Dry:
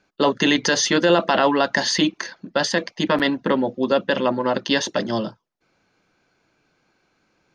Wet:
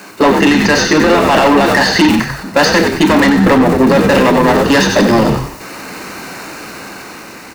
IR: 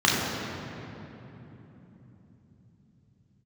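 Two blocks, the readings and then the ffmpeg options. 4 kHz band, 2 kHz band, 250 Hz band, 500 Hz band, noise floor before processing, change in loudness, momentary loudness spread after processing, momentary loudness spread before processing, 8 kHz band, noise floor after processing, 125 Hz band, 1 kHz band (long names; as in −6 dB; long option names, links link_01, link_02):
+6.5 dB, +10.5 dB, +12.5 dB, +9.5 dB, −68 dBFS, +10.0 dB, 18 LU, 7 LU, +6.0 dB, −33 dBFS, +15.0 dB, +11.0 dB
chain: -filter_complex "[0:a]aeval=exprs='val(0)+0.5*0.0376*sgn(val(0))':channel_layout=same,bandreject=frequency=3400:width=5.4,acrossover=split=4000[link_01][link_02];[link_02]acompressor=threshold=-36dB:ratio=4:attack=1:release=60[link_03];[link_01][link_03]amix=inputs=2:normalize=0,highpass=frequency=170:width=0.5412,highpass=frequency=170:width=1.3066,agate=range=-14dB:threshold=-24dB:ratio=16:detection=peak,dynaudnorm=framelen=300:gausssize=9:maxgain=11.5dB,asoftclip=type=tanh:threshold=-19dB,asplit=5[link_04][link_05][link_06][link_07][link_08];[link_05]adelay=92,afreqshift=-85,volume=-6dB[link_09];[link_06]adelay=184,afreqshift=-170,volume=-15.4dB[link_10];[link_07]adelay=276,afreqshift=-255,volume=-24.7dB[link_11];[link_08]adelay=368,afreqshift=-340,volume=-34.1dB[link_12];[link_04][link_09][link_10][link_11][link_12]amix=inputs=5:normalize=0,asplit=2[link_13][link_14];[1:a]atrim=start_sample=2205,atrim=end_sample=3969[link_15];[link_14][link_15]afir=irnorm=-1:irlink=0,volume=-21dB[link_16];[link_13][link_16]amix=inputs=2:normalize=0,alimiter=level_in=14dB:limit=-1dB:release=50:level=0:latency=1,volume=-1dB"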